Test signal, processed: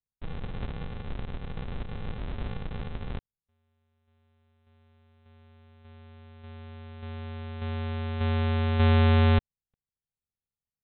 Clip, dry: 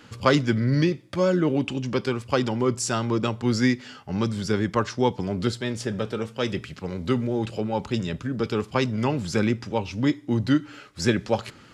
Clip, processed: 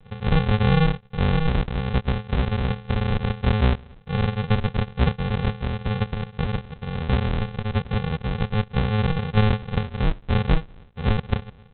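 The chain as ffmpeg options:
-af "lowshelf=f=320:g=9,aresample=8000,acrusher=samples=25:mix=1:aa=0.000001,aresample=44100,volume=-3dB"

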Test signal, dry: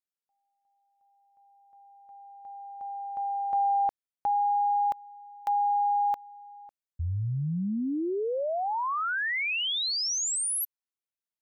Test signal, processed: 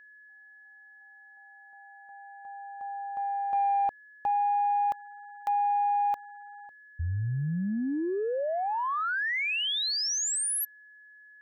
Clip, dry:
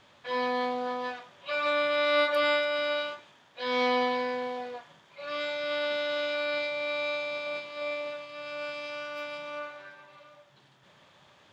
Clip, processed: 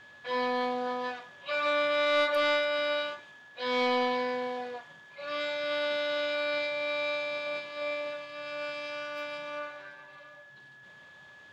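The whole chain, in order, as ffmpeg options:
-af "aeval=exprs='val(0)+0.00282*sin(2*PI*1700*n/s)':c=same,asoftclip=type=tanh:threshold=-17dB"

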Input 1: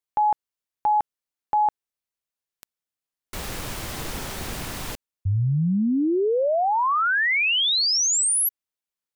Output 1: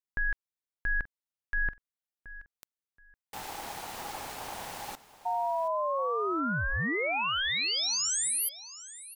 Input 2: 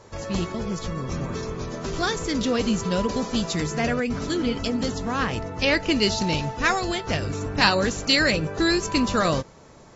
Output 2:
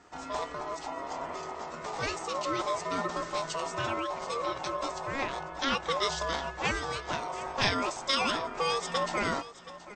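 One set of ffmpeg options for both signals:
-af "aecho=1:1:726|1452:0.15|0.0329,aeval=exprs='val(0)*sin(2*PI*820*n/s)':c=same,volume=-5.5dB"

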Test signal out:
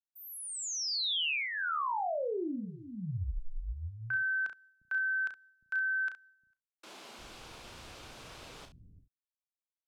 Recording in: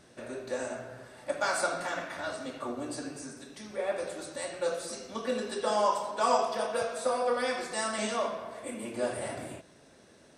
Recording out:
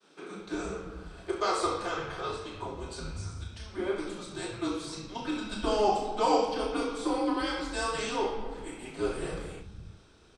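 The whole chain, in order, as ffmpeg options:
-filter_complex "[0:a]aemphasis=mode=production:type=75kf,asplit=2[a][b];[b]aecho=0:1:34|67:0.447|0.251[c];[a][c]amix=inputs=2:normalize=0,agate=range=-33dB:threshold=-51dB:ratio=3:detection=peak,highpass=150,lowpass=3.3k,equalizer=f=2.1k:w=4.2:g=-7,afreqshift=-200,acrossover=split=200[d][e];[d]adelay=350[f];[f][e]amix=inputs=2:normalize=0"

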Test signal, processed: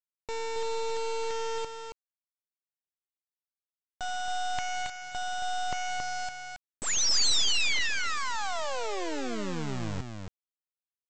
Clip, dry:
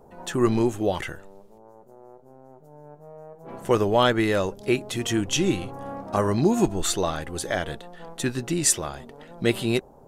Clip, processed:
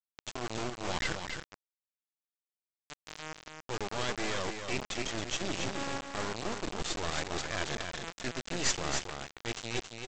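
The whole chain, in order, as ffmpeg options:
-af "lowpass=2.6k,adynamicequalizer=threshold=0.0141:dfrequency=1700:dqfactor=1.2:tfrequency=1700:tqfactor=1.2:attack=5:release=100:ratio=0.375:range=1.5:mode=cutabove:tftype=bell,areverse,acompressor=threshold=-34dB:ratio=12,areverse,crystalizer=i=7.5:c=0,aresample=16000,acrusher=bits=3:dc=4:mix=0:aa=0.000001,aresample=44100,aecho=1:1:274:0.501,volume=1.5dB"

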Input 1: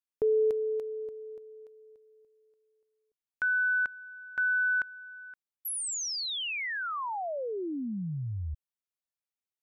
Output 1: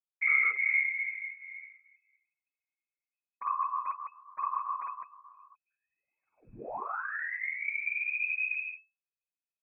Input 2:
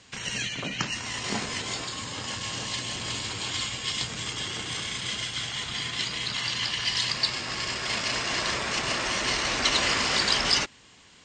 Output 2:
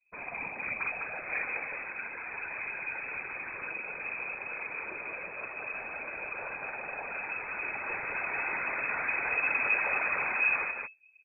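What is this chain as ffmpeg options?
-filter_complex "[0:a]anlmdn=0.0631,lowshelf=f=120:g=11,aecho=1:1:52.48|207:0.891|0.501,acrossover=split=140|680|1800[a][b][c][d];[d]acompressor=threshold=-37dB:ratio=6:attack=68:release=233:knee=6:detection=peak[e];[a][b][c][e]amix=inputs=4:normalize=0,volume=18dB,asoftclip=hard,volume=-18dB,asubboost=boost=3:cutoff=56,flanger=delay=3:depth=4.8:regen=-27:speed=0.52:shape=triangular,aeval=exprs='0.2*(cos(1*acos(clip(val(0)/0.2,-1,1)))-cos(1*PI/2))+0.0112*(cos(2*acos(clip(val(0)/0.2,-1,1)))-cos(2*PI/2))+0.00631*(cos(4*acos(clip(val(0)/0.2,-1,1)))-cos(4*PI/2))+0.0355*(cos(5*acos(clip(val(0)/0.2,-1,1)))-cos(5*PI/2))+0.0141*(cos(7*acos(clip(val(0)/0.2,-1,1)))-cos(7*PI/2))':c=same,afftfilt=real='hypot(re,im)*cos(2*PI*random(0))':imag='hypot(re,im)*sin(2*PI*random(1))':win_size=512:overlap=0.75,lowpass=f=2.2k:t=q:w=0.5098,lowpass=f=2.2k:t=q:w=0.6013,lowpass=f=2.2k:t=q:w=0.9,lowpass=f=2.2k:t=q:w=2.563,afreqshift=-2600,volume=1.5dB"

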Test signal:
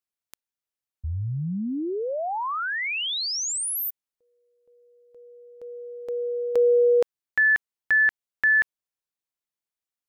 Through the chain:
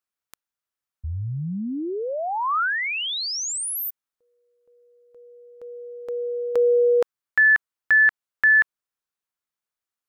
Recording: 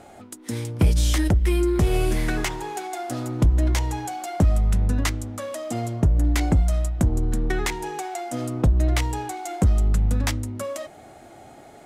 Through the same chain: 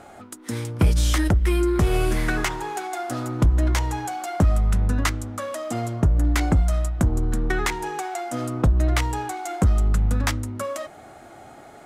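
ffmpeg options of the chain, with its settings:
-af "equalizer=f=1.3k:t=o:w=0.91:g=6.5"

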